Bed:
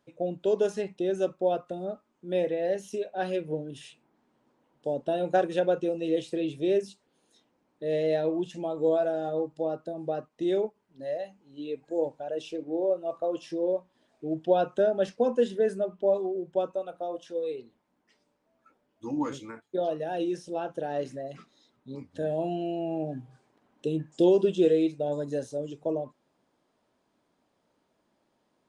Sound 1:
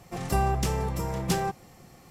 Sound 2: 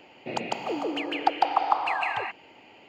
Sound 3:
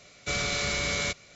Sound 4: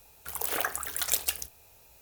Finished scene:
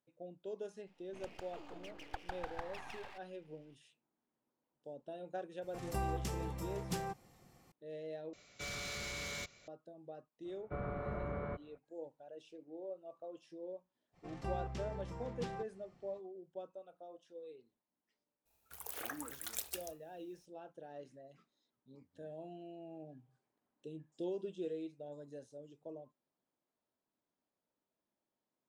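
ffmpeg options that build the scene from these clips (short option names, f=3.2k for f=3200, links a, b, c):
-filter_complex "[1:a]asplit=2[a][b];[3:a]asplit=2[c][d];[0:a]volume=-19dB[e];[2:a]aeval=exprs='max(val(0),0)':c=same[f];[c]asoftclip=type=tanh:threshold=-29.5dB[g];[d]lowpass=f=1.2k:w=0.5412,lowpass=f=1.2k:w=1.3066[h];[b]lowpass=4.4k[i];[4:a]agate=range=-33dB:threshold=-52dB:ratio=3:release=100:detection=peak[j];[e]asplit=2[k][l];[k]atrim=end=8.334[m];[g]atrim=end=1.35,asetpts=PTS-STARTPTS,volume=-9.5dB[n];[l]atrim=start=9.676[o];[f]atrim=end=2.88,asetpts=PTS-STARTPTS,volume=-18dB,afade=t=in:d=0.004:c=hsin,afade=t=out:st=2.876:d=0.004:c=hsin,adelay=870[p];[a]atrim=end=2.1,asetpts=PTS-STARTPTS,volume=-12.5dB,afade=t=in:d=0.004:c=hsin,afade=t=out:st=2.096:d=0.004:c=hsin,adelay=5620[q];[h]atrim=end=1.35,asetpts=PTS-STARTPTS,volume=-6dB,afade=t=in:d=0.02,afade=t=out:st=1.33:d=0.02,adelay=10440[r];[i]atrim=end=2.1,asetpts=PTS-STARTPTS,volume=-16dB,afade=t=in:d=0.05,afade=t=out:st=2.05:d=0.05,adelay=622692S[s];[j]atrim=end=2.01,asetpts=PTS-STARTPTS,volume=-14dB,afade=t=in:d=0.004:c=hsin,afade=t=out:st=2.006:d=0.004:c=hsin,adelay=18450[t];[m][n]acrossfade=d=0.004:c1=hsin:c2=hsin[u];[u][o]acrossfade=d=0.004:c1=hsin:c2=hsin[v];[v][p][q][r][s][t]amix=inputs=6:normalize=0"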